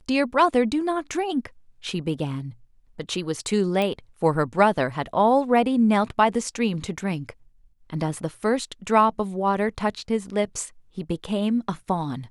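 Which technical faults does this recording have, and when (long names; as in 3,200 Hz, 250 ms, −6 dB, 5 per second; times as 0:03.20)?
0:03.82: click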